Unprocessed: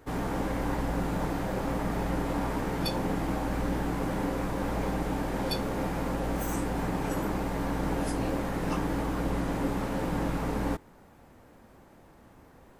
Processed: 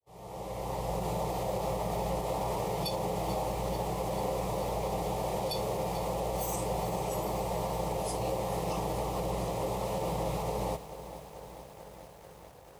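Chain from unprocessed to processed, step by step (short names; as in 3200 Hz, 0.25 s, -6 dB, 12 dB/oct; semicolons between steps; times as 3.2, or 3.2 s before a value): opening faded in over 1.08 s; HPF 86 Hz 12 dB/oct; fixed phaser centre 640 Hz, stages 4; limiter -27.5 dBFS, peak gain reduction 7.5 dB; lo-fi delay 0.439 s, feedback 80%, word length 9-bit, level -13.5 dB; gain +4 dB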